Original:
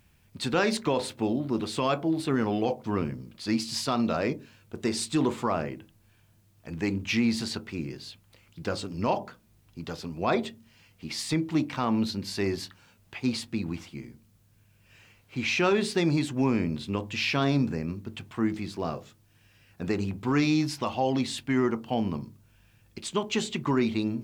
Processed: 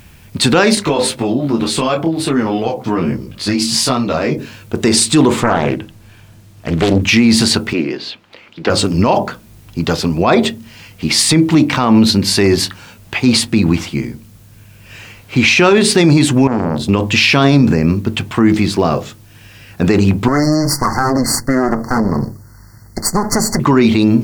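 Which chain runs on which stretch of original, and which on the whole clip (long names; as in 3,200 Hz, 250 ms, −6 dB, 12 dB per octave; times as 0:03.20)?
0:00.75–0:04.38: downward compressor 4 to 1, threshold −28 dBFS + micro pitch shift up and down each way 13 cents
0:05.40–0:07.02: high-shelf EQ 9,000 Hz −4.5 dB + highs frequency-modulated by the lows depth 0.86 ms
0:07.73–0:08.70: three-way crossover with the lows and the highs turned down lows −22 dB, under 230 Hz, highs −22 dB, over 4,600 Hz + floating-point word with a short mantissa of 6 bits + highs frequency-modulated by the lows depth 0.13 ms
0:16.47–0:16.89: downward compressor 10 to 1, threshold −27 dBFS + parametric band 2,300 Hz −13.5 dB 1.3 octaves + saturating transformer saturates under 810 Hz
0:20.28–0:23.60: lower of the sound and its delayed copy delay 0.86 ms + linear-phase brick-wall band-stop 2,100–4,200 Hz + downward compressor 4 to 1, threshold −31 dBFS
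whole clip: dynamic equaliser 9,300 Hz, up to +5 dB, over −55 dBFS, Q 2.8; boost into a limiter +22 dB; level −1 dB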